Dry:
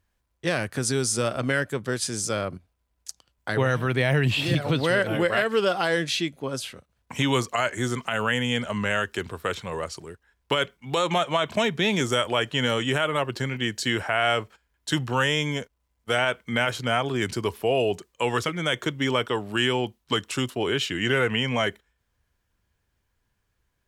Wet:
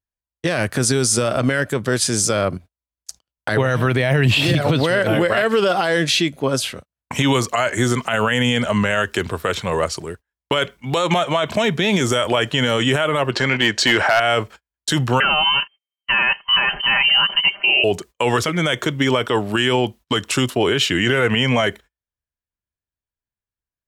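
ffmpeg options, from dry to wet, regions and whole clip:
-filter_complex "[0:a]asettb=1/sr,asplit=3[s0][s1][s2];[s0]atrim=end=13.314[s3];[s1]atrim=start=13.31:end=14.2,asetpts=PTS-STARTPTS,afade=t=in:d=0.004:c=qsin,afade=t=out:st=0.886:d=0.004:c=qsin,lowpass=7400,asplit=2[s4][s5];[s5]highpass=f=720:p=1,volume=4.47,asoftclip=type=tanh:threshold=0.316[s6];[s4][s6]amix=inputs=2:normalize=0,lowpass=f=3400:p=1,volume=0.501,volume=5.31,asoftclip=hard,volume=0.188[s7];[s2]atrim=start=14.196[s8];[s3][s7]acrossfade=d=0.004:c1=hsin:c2=qsin[s9];[s9][s8]acrossfade=d=0.004:c1=qsin:c2=hsin,asettb=1/sr,asplit=3[s10][s11][s12];[s10]atrim=end=15.204[s13];[s11]atrim=start=15.2:end=17.84,asetpts=PTS-STARTPTS,afade=t=in:d=0.004:c=qsin,afade=t=out:st=2.636:d=0.004:c=qsin,aecho=1:1:5:0.8,atrim=end_sample=116424,lowpass=f=2700:t=q:w=0.5098,lowpass=f=2700:t=q:w=0.6013,lowpass=f=2700:t=q:w=0.9,lowpass=f=2700:t=q:w=2.563,afreqshift=-3200[s14];[s12]atrim=start=17.836[s15];[s13][s14]acrossfade=d=0.004:c1=hsin:c2=qsin[s16];[s16][s15]acrossfade=d=0.004:c1=qsin:c2=hsin,agate=range=0.0282:threshold=0.00501:ratio=16:detection=peak,equalizer=f=630:t=o:w=0.21:g=3,alimiter=level_in=7.08:limit=0.891:release=50:level=0:latency=1,volume=0.473"

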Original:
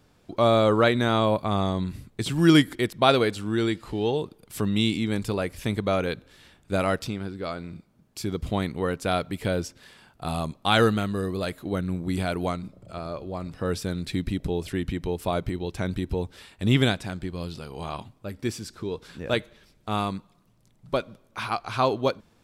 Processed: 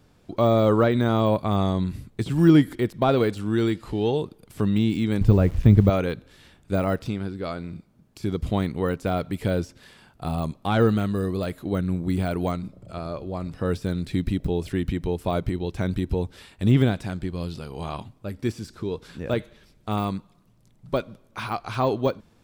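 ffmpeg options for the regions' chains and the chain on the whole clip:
-filter_complex "[0:a]asettb=1/sr,asplit=3[s0][s1][s2];[s0]atrim=end=5.214[s3];[s1]atrim=start=5.21:end=5.9,asetpts=PTS-STARTPTS,afade=t=in:d=0.004:c=qsin,afade=t=out:st=0.686:d=0.004:c=qsin,aemphasis=mode=reproduction:type=riaa,aeval=exprs='val(0)*gte(abs(val(0)),0.0112)':c=same[s4];[s2]atrim=start=5.896[s5];[s3][s4]acrossfade=d=0.004:c1=hsin:c2=qsin[s6];[s6][s5]acrossfade=d=0.004:c1=qsin:c2=hsin,deesser=1,lowshelf=f=380:g=4"

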